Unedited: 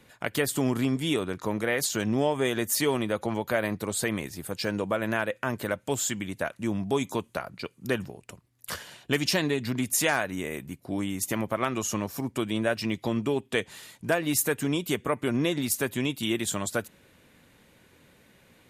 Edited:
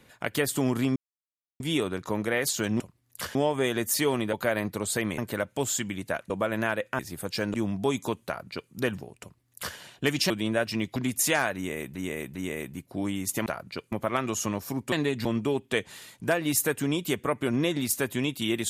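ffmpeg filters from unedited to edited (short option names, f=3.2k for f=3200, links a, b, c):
-filter_complex "[0:a]asplit=17[a][b][c][d][e][f][g][h][i][j][k][l][m][n][o][p][q];[a]atrim=end=0.96,asetpts=PTS-STARTPTS,afade=t=out:st=0.956:d=0.004:c=hsin,apad=pad_dur=0.64[r];[b]atrim=start=0.96:end=2.162,asetpts=PTS-STARTPTS,afade=t=in:d=0.004:c=hsin[s];[c]atrim=start=8.288:end=8.842[t];[d]atrim=start=2.158:end=3.142[u];[e]atrim=start=3.398:end=4.252[v];[f]atrim=start=5.488:end=6.612[w];[g]atrim=start=4.798:end=5.492[x];[h]atrim=start=4.248:end=4.802[y];[i]atrim=start=6.608:end=9.372[z];[j]atrim=start=12.398:end=13.062[aa];[k]atrim=start=9.698:end=10.692[ab];[l]atrim=start=10.288:end=10.692[ac];[m]atrim=start=10.288:end=11.402[ad];[n]atrim=start=7.328:end=7.792[ae];[o]atrim=start=11.398:end=12.402[af];[p]atrim=start=9.368:end=9.702[ag];[q]atrim=start=13.058[ah];[r][s]concat=n=2:v=0:a=1[ai];[ai][t]acrossfade=d=0.004:c1=hsin:c2=hsin[aj];[aj][u]acrossfade=d=0.004:c1=hsin:c2=hsin[ak];[ak][v]acrossfade=d=0.004:c1=hsin:c2=hsin[al];[al][w]acrossfade=d=0.004:c1=hsin:c2=hsin[am];[am][x]acrossfade=d=0.004:c1=hsin:c2=hsin[an];[an][y]acrossfade=d=0.004:c1=hsin:c2=hsin[ao];[ao][z]acrossfade=d=0.004:c1=hsin:c2=hsin[ap];[ap][aa]acrossfade=d=0.004:c1=hsin:c2=hsin[aq];[aq][ab]acrossfade=d=0.004:c1=hsin:c2=hsin[ar];[ar][ac]acrossfade=d=0.004:c1=hsin:c2=hsin[as];[as][ad]acrossfade=d=0.004:c1=hsin:c2=hsin[at];[at][ae]acrossfade=d=0.004:c1=hsin:c2=hsin[au];[au][af]acrossfade=d=0.004:c1=hsin:c2=hsin[av];[av][ag]acrossfade=d=0.004:c1=hsin:c2=hsin[aw];[aw][ah]acrossfade=d=0.004:c1=hsin:c2=hsin"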